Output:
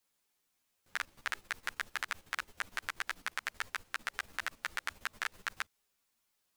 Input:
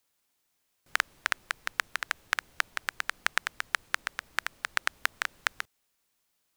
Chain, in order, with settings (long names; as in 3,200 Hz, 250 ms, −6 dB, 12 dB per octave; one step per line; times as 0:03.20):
output level in coarse steps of 12 dB
brickwall limiter −17 dBFS, peak gain reduction 3.5 dB
string-ensemble chorus
level +7.5 dB